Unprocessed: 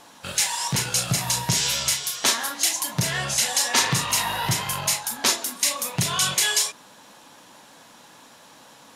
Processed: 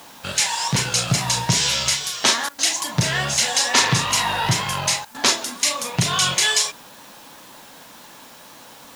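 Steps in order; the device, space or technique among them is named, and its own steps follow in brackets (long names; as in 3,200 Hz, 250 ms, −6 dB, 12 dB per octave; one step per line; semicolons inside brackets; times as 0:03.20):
worn cassette (low-pass filter 7,300 Hz 12 dB per octave; tape wow and flutter; tape dropouts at 0:02.49/0:05.05, 94 ms −18 dB; white noise bed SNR 26 dB)
level +4.5 dB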